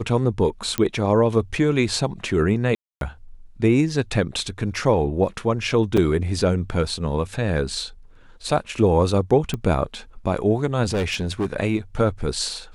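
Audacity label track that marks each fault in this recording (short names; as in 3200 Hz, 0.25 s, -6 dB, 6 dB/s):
0.780000	0.780000	pop -8 dBFS
2.750000	3.010000	gap 0.262 s
5.970000	5.970000	gap 4.7 ms
9.540000	9.540000	pop -14 dBFS
10.830000	11.460000	clipped -19 dBFS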